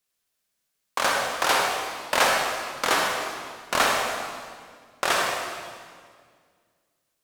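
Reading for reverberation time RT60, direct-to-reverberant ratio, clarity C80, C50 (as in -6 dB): 1.9 s, -1.5 dB, 1.5 dB, -0.5 dB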